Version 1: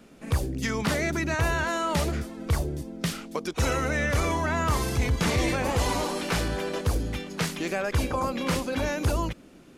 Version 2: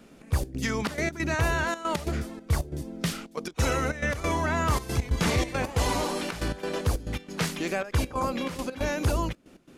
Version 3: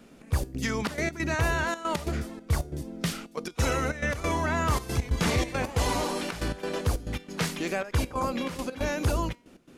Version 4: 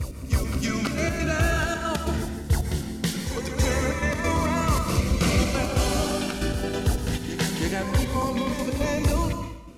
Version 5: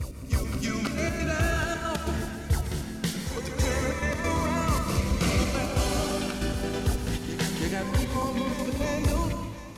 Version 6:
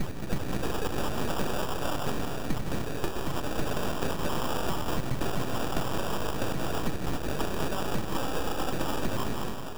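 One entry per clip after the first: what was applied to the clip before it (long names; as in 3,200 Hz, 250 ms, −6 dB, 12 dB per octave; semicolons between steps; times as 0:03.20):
gate pattern "xx.x.xxx.x.xxx" 138 BPM −12 dB
tuned comb filter 240 Hz, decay 0.45 s, harmonics all, mix 40%; level +3.5 dB
backwards echo 324 ms −8.5 dB; dense smooth reverb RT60 0.87 s, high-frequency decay 0.85×, pre-delay 105 ms, DRR 6 dB; phaser whose notches keep moving one way rising 0.21 Hz; level +3.5 dB
echo with a time of its own for lows and highs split 690 Hz, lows 219 ms, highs 712 ms, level −14.5 dB; level −3 dB
sample-rate reduction 2,100 Hz, jitter 0%; full-wave rectification; downward compressor, threshold −30 dBFS, peak gain reduction 10.5 dB; level +6.5 dB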